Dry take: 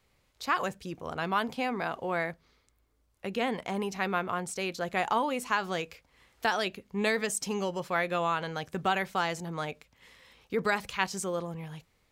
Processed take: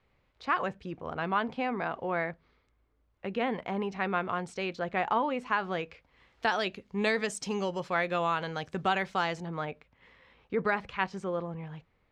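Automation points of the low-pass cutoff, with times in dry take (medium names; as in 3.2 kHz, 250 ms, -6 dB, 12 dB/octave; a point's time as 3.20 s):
4.06 s 2.7 kHz
4.35 s 4.7 kHz
4.93 s 2.6 kHz
5.72 s 2.6 kHz
6.86 s 5.8 kHz
9.20 s 5.8 kHz
9.68 s 2.3 kHz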